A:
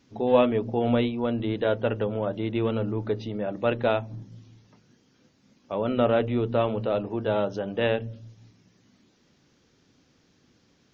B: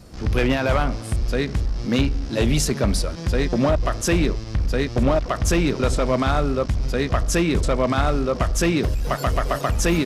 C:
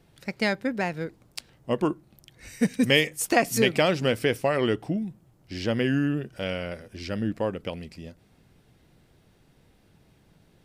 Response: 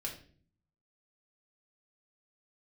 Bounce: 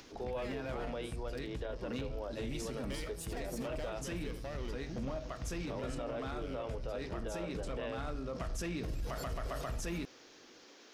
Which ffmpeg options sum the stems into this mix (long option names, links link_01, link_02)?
-filter_complex "[0:a]highpass=frequency=330:width=0.5412,highpass=frequency=330:width=1.3066,acompressor=mode=upward:threshold=-28dB:ratio=2.5,volume=-11.5dB[link_01];[1:a]volume=-13.5dB,afade=type=in:start_time=8.25:duration=0.23:silence=0.398107,asplit=2[link_02][link_03];[link_03]volume=-4dB[link_04];[2:a]asoftclip=type=hard:threshold=-21dB,volume=-17.5dB,asplit=2[link_05][link_06];[link_06]volume=-12.5dB[link_07];[3:a]atrim=start_sample=2205[link_08];[link_04][link_08]afir=irnorm=-1:irlink=0[link_09];[link_07]aecho=0:1:79:1[link_10];[link_01][link_02][link_05][link_09][link_10]amix=inputs=5:normalize=0,alimiter=level_in=7dB:limit=-24dB:level=0:latency=1:release=41,volume=-7dB"